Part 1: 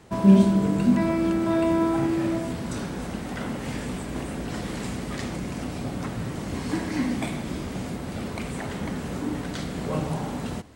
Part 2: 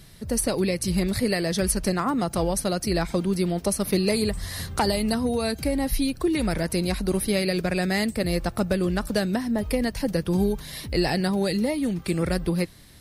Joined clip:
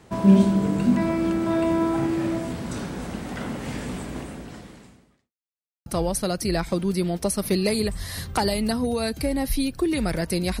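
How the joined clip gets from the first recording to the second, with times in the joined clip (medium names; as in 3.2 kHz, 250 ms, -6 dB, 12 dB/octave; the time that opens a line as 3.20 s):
part 1
4.04–5.33 s: fade out quadratic
5.33–5.86 s: mute
5.86 s: go over to part 2 from 2.28 s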